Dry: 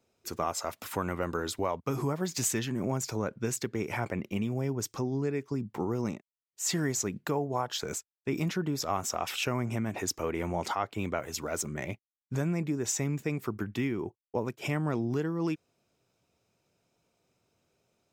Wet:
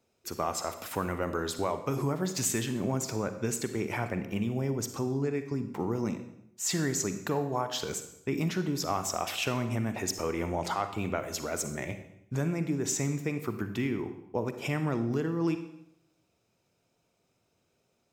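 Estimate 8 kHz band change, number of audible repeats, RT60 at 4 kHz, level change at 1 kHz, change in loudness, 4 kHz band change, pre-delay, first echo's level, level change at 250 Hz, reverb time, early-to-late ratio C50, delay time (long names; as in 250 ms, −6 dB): +0.5 dB, no echo audible, 0.70 s, +0.5 dB, +0.5 dB, +0.5 dB, 39 ms, no echo audible, +1.0 dB, 0.80 s, 10.0 dB, no echo audible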